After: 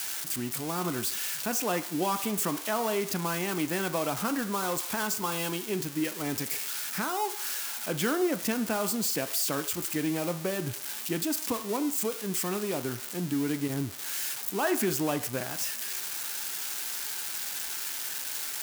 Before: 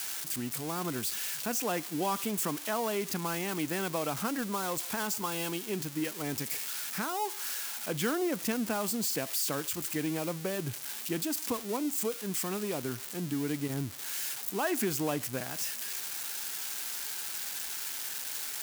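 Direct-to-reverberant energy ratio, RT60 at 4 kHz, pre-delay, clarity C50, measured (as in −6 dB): 9.0 dB, 0.60 s, 3 ms, 13.5 dB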